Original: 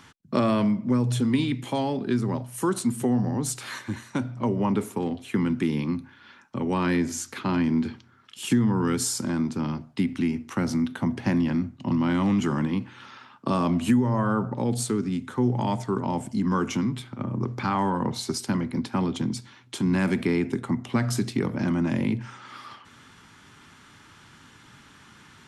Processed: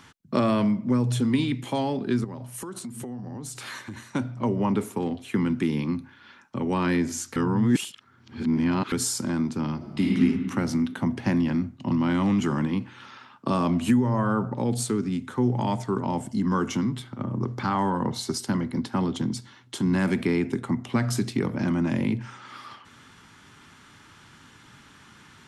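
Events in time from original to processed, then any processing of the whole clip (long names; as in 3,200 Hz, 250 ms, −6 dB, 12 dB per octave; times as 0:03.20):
0:02.24–0:04.05: downward compressor 16 to 1, threshold −32 dBFS
0:07.36–0:08.92: reverse
0:09.76–0:10.16: thrown reverb, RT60 2.1 s, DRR −3.5 dB
0:16.21–0:20.08: notch filter 2,400 Hz, Q 9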